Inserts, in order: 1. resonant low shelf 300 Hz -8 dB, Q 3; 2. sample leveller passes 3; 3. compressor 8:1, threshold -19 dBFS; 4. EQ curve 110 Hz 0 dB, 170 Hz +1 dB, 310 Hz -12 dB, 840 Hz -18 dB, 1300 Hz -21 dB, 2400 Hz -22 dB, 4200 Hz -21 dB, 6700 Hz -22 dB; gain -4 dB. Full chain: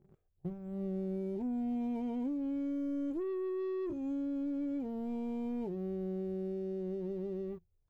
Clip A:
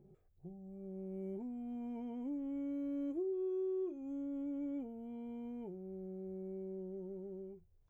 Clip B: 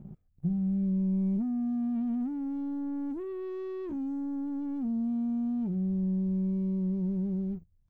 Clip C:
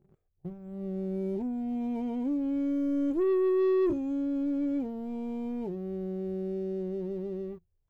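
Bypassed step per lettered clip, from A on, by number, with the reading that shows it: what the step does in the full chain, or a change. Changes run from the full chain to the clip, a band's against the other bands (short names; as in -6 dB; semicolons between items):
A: 2, crest factor change +2.0 dB; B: 1, loudness change +6.0 LU; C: 3, mean gain reduction 4.5 dB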